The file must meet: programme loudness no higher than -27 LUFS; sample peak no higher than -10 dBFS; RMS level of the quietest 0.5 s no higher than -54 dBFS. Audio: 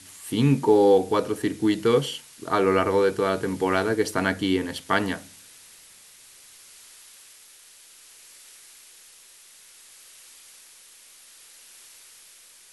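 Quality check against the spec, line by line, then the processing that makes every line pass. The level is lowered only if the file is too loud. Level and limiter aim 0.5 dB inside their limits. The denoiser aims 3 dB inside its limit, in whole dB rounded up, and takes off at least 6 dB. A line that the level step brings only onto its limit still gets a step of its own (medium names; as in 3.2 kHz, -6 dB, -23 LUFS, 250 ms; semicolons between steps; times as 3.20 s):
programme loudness -23.0 LUFS: fail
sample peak -5.5 dBFS: fail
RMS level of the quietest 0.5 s -51 dBFS: fail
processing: trim -4.5 dB; peak limiter -10.5 dBFS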